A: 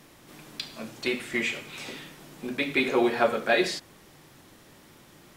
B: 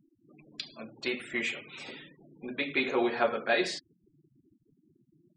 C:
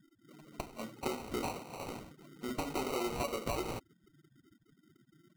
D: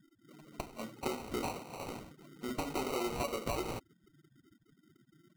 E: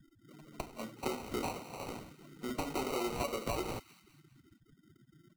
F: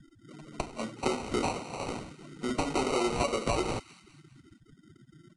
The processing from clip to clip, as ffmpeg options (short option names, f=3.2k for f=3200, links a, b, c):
-af "afftfilt=real='re*gte(hypot(re,im),0.01)':imag='im*gte(hypot(re,im),0.01)':win_size=1024:overlap=0.75,lowshelf=f=230:g=-5,volume=-3.5dB"
-af "alimiter=limit=-20dB:level=0:latency=1:release=97,acompressor=threshold=-34dB:ratio=4,acrusher=samples=26:mix=1:aa=0.000001,volume=1dB"
-af anull
-filter_complex "[0:a]acrossover=split=110|1200[a][b][c];[a]acompressor=mode=upward:threshold=-57dB:ratio=2.5[d];[c]aecho=1:1:202|404|606|808:0.168|0.0755|0.034|0.0153[e];[d][b][e]amix=inputs=3:normalize=0"
-af "aresample=22050,aresample=44100,volume=7dB"